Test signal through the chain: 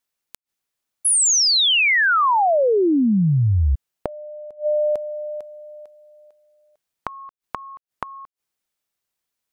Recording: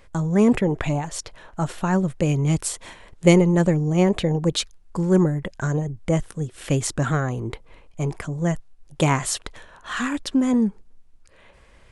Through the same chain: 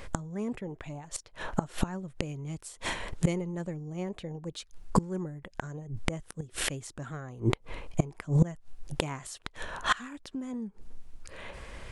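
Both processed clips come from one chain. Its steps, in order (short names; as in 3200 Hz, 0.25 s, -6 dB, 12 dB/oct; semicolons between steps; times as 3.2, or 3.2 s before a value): flipped gate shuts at -19 dBFS, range -26 dB; gain +8.5 dB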